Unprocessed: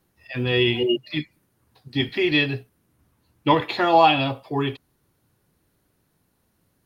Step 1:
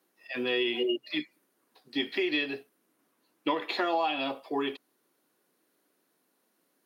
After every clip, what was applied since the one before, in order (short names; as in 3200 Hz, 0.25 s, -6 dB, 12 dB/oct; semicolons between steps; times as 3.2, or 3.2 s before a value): HPF 260 Hz 24 dB/oct; notch 870 Hz, Q 18; compressor 5:1, threshold -23 dBFS, peak gain reduction 11 dB; gain -2.5 dB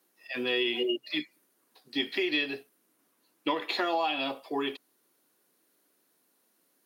high shelf 3700 Hz +6.5 dB; gain -1 dB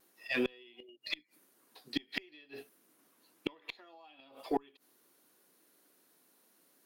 flipped gate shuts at -22 dBFS, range -31 dB; vibrato 0.45 Hz 11 cents; added harmonics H 8 -34 dB, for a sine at -18 dBFS; gain +2.5 dB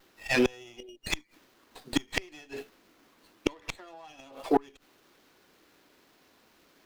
running maximum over 5 samples; gain +8.5 dB